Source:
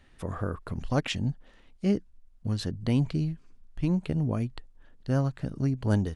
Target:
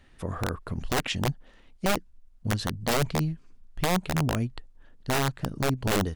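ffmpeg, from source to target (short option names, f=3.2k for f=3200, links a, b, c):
-af "aeval=exprs='(mod(10*val(0)+1,2)-1)/10':c=same,volume=1.5dB"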